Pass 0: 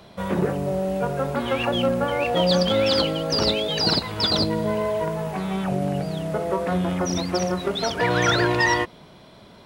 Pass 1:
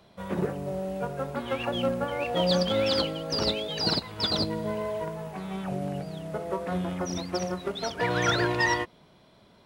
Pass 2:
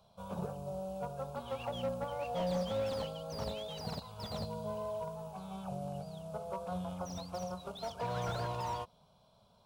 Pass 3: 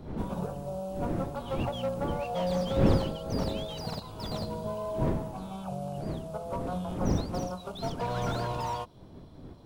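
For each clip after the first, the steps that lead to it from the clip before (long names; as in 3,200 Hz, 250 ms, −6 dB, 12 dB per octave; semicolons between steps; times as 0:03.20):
expander for the loud parts 1.5 to 1, over −29 dBFS; level −4 dB
phaser with its sweep stopped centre 790 Hz, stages 4; slew-rate limiting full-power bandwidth 34 Hz; level −5.5 dB
wind on the microphone 270 Hz −39 dBFS; level +4.5 dB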